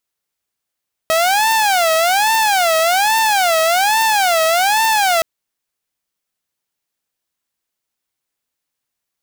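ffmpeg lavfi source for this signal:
-f lavfi -i "aevalsrc='0.335*(2*mod((768*t-127/(2*PI*1.2)*sin(2*PI*1.2*t)),1)-1)':d=4.12:s=44100"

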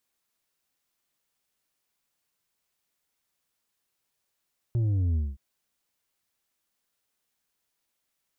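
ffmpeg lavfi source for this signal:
-f lavfi -i "aevalsrc='0.0708*clip((0.62-t)/0.21,0,1)*tanh(1.88*sin(2*PI*120*0.62/log(65/120)*(exp(log(65/120)*t/0.62)-1)))/tanh(1.88)':d=0.62:s=44100"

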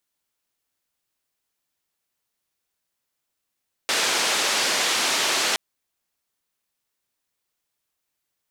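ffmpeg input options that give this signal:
-f lavfi -i "anoisesrc=c=white:d=1.67:r=44100:seed=1,highpass=f=320,lowpass=f=5800,volume=-11.9dB"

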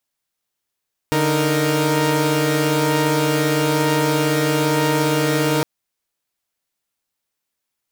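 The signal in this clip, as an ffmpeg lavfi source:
-f lavfi -i "aevalsrc='0.126*((2*mod(146.83*t,1)-1)+(2*mod(311.13*t,1)-1)+(2*mod(466.16*t,1)-1))':d=4.51:s=44100"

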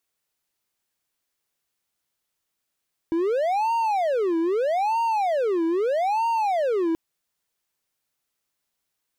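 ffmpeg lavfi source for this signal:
-f lavfi -i "aevalsrc='0.126*(1-4*abs(mod((626*t-299/(2*PI*0.79)*sin(2*PI*0.79*t))+0.25,1)-0.5))':d=3.83:s=44100"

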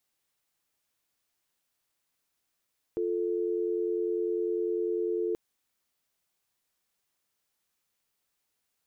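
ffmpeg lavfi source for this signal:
-f lavfi -i "aevalsrc='0.0335*(sin(2*PI*350*t)+sin(2*PI*440*t))':d=2.38:s=44100"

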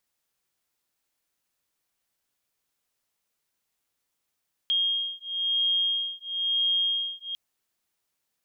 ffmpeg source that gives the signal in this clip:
-f lavfi -i "aevalsrc='0.0447*(sin(2*PI*3240*t)+sin(2*PI*3241*t))':d=2.65:s=44100"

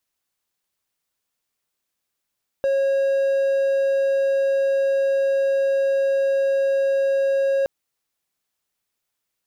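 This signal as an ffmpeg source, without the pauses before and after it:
-f lavfi -i "aevalsrc='0.178*(1-4*abs(mod(546*t+0.25,1)-0.5))':d=5.02:s=44100"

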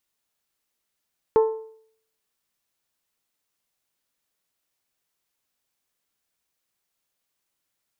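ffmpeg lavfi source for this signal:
-f lavfi -i "aevalsrc='0.266*pow(10,-3*t/0.61)*sin(2*PI*442*t)+0.0891*pow(10,-3*t/0.495)*sin(2*PI*884*t)+0.0299*pow(10,-3*t/0.469)*sin(2*PI*1060.8*t)+0.01*pow(10,-3*t/0.439)*sin(2*PI*1326*t)+0.00335*pow(10,-3*t/0.402)*sin(2*PI*1768*t)':d=1.55:s=44100"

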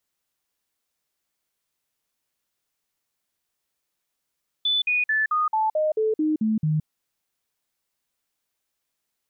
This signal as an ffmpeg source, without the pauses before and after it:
-f lavfi -i "aevalsrc='0.112*clip(min(mod(t,0.22),0.17-mod(t,0.22))/0.005,0,1)*sin(2*PI*3490*pow(2,-floor(t/0.22)/2)*mod(t,0.22))':d=2.2:s=44100"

